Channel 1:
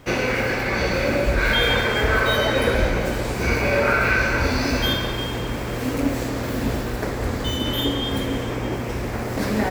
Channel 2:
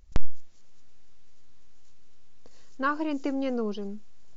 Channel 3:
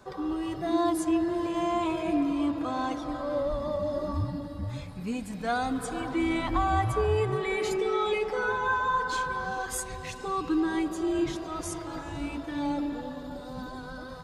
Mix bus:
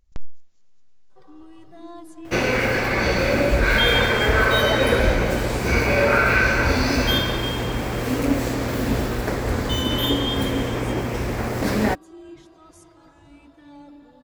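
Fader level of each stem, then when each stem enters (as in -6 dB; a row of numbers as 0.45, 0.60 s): +1.5, -8.5, -14.5 dB; 2.25, 0.00, 1.10 s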